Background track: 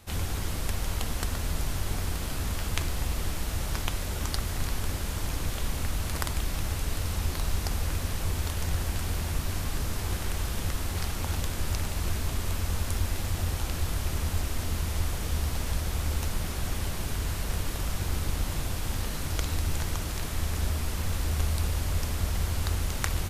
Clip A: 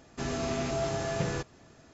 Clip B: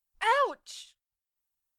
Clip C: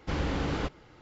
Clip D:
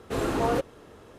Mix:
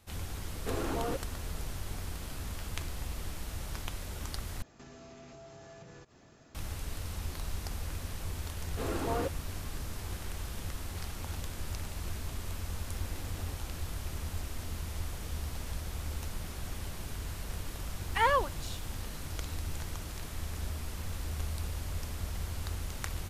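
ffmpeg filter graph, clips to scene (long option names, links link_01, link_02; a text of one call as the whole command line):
ffmpeg -i bed.wav -i cue0.wav -i cue1.wav -i cue2.wav -i cue3.wav -filter_complex "[4:a]asplit=2[link_01][link_02];[0:a]volume=-8.5dB[link_03];[link_01]acompressor=threshold=-38dB:ratio=3:attack=92:release=24:knee=1:detection=peak[link_04];[1:a]acompressor=threshold=-46dB:ratio=6:attack=3.2:release=140:knee=1:detection=peak[link_05];[3:a]alimiter=level_in=1dB:limit=-24dB:level=0:latency=1:release=71,volume=-1dB[link_06];[2:a]acrusher=bits=10:mix=0:aa=0.000001[link_07];[link_03]asplit=2[link_08][link_09];[link_08]atrim=end=4.624[link_10];[link_05]atrim=end=1.93,asetpts=PTS-STARTPTS,volume=-3dB[link_11];[link_09]atrim=start=6.546[link_12];[link_04]atrim=end=1.18,asetpts=PTS-STARTPTS,volume=-4.5dB,afade=type=in:duration=0.004:curve=hsin,afade=type=out:start_time=1.176:duration=0.004:curve=hsin,adelay=560[link_13];[link_02]atrim=end=1.18,asetpts=PTS-STARTPTS,volume=-8dB,afade=type=in:duration=0.004:curve=hsin,afade=type=out:start_time=1.176:duration=0.004:curve=hsin,adelay=8670[link_14];[link_06]atrim=end=1.01,asetpts=PTS-STARTPTS,volume=-16.5dB,afade=type=in:duration=0.004:curve=hsin,afade=type=out:start_time=1.006:duration=0.004:curve=hsin,adelay=12860[link_15];[link_07]atrim=end=1.78,asetpts=PTS-STARTPTS,volume=-1.5dB,afade=type=in:duration=0.004:curve=hsin,afade=type=out:start_time=1.776:duration=0.004:curve=hsin,adelay=17940[link_16];[link_10][link_11]acrossfade=duration=0.004:curve1=hsin:curve2=hsin[link_17];[link_17][link_12]acrossfade=duration=0.004:curve1=hsin:curve2=hsin[link_18];[link_18][link_13][link_14][link_15][link_16]amix=inputs=5:normalize=0" out.wav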